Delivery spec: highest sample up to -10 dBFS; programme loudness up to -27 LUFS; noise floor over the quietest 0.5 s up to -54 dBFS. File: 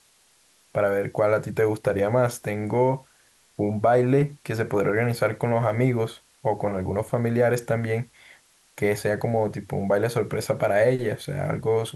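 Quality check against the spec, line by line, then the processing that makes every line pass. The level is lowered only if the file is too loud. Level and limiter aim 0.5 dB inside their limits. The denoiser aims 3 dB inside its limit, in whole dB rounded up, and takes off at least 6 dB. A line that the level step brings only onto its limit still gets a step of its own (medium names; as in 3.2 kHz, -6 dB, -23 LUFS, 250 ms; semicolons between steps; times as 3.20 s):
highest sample -9.0 dBFS: fail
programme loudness -24.5 LUFS: fail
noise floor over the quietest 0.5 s -60 dBFS: pass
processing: trim -3 dB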